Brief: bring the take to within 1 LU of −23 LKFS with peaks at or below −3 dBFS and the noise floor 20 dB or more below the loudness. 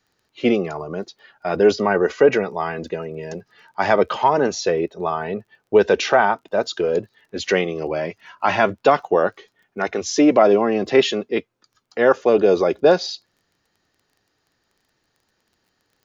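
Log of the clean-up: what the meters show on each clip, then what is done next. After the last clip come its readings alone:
crackle rate 23 per second; integrated loudness −19.5 LKFS; sample peak −3.5 dBFS; target loudness −23.0 LKFS
→ click removal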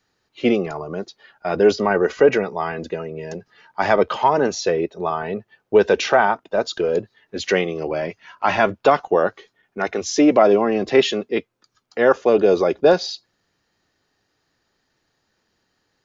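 crackle rate 0 per second; integrated loudness −19.5 LKFS; sample peak −3.5 dBFS; target loudness −23.0 LKFS
→ level −3.5 dB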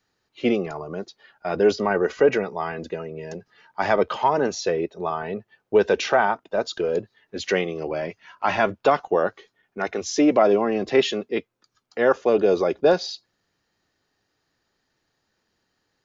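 integrated loudness −23.0 LKFS; sample peak −7.0 dBFS; background noise floor −75 dBFS

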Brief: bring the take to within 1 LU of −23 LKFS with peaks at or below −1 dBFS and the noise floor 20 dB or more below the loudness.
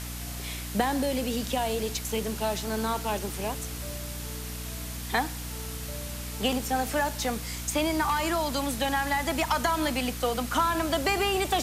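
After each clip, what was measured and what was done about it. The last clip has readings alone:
mains hum 60 Hz; hum harmonics up to 300 Hz; level of the hum −36 dBFS; background noise floor −37 dBFS; target noise floor −49 dBFS; integrated loudness −29.0 LKFS; sample peak −11.5 dBFS; target loudness −23.0 LKFS
→ mains-hum notches 60/120/180/240/300 Hz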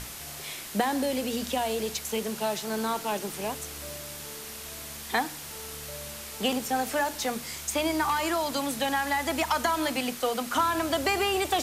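mains hum none found; background noise floor −41 dBFS; target noise floor −50 dBFS
→ broadband denoise 9 dB, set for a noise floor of −41 dBFS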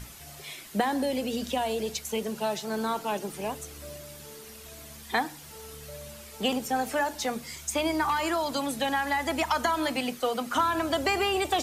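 background noise floor −46 dBFS; target noise floor −49 dBFS
→ broadband denoise 6 dB, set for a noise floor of −46 dBFS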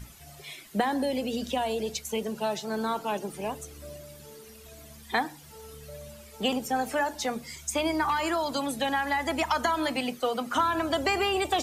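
background noise floor −49 dBFS; integrated loudness −29.0 LKFS; sample peak −13.0 dBFS; target loudness −23.0 LKFS
→ level +6 dB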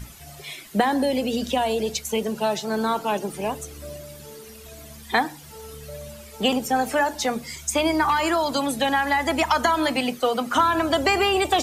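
integrated loudness −23.0 LKFS; sample peak −7.0 dBFS; background noise floor −43 dBFS

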